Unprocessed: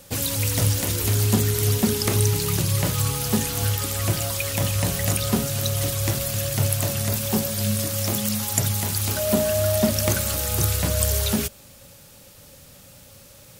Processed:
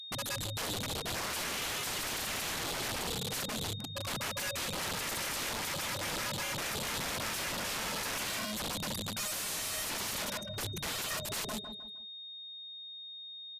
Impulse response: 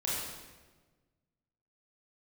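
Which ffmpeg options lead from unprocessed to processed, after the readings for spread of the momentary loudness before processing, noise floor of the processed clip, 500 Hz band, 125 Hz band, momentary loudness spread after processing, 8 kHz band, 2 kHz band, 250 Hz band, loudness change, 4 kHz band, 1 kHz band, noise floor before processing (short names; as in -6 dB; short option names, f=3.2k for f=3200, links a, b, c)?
3 LU, -46 dBFS, -15.5 dB, -22.0 dB, 9 LU, -12.0 dB, -4.0 dB, -17.0 dB, -13.0 dB, -6.0 dB, -5.5 dB, -48 dBFS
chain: -filter_complex "[0:a]afftfilt=real='re*gte(hypot(re,im),0.178)':imag='im*gte(hypot(re,im),0.178)':win_size=1024:overlap=0.75,equalizer=f=300:w=3.3:g=-13.5,acontrast=75,aeval=exprs='val(0)+0.00447*sin(2*PI*3700*n/s)':c=same,highpass=f=190:w=0.5412,highpass=f=190:w=1.3066,equalizer=f=200:t=q:w=4:g=8,equalizer=f=720:t=q:w=4:g=-5,equalizer=f=1.1k:t=q:w=4:g=-6,equalizer=f=3.7k:t=q:w=4:g=4,equalizer=f=5.8k:t=q:w=4:g=4,lowpass=f=7.6k:w=0.5412,lowpass=f=7.6k:w=1.3066,aeval=exprs='0.0944*(abs(mod(val(0)/0.0944+3,4)-2)-1)':c=same,asplit=2[a][b];[b]aecho=0:1:154|308|462|616:0.266|0.0905|0.0308|0.0105[c];[a][c]amix=inputs=2:normalize=0,aeval=exprs='(mod(35.5*val(0)+1,2)-1)/35.5':c=same" -ar 32000 -c:a libmp3lame -b:a 192k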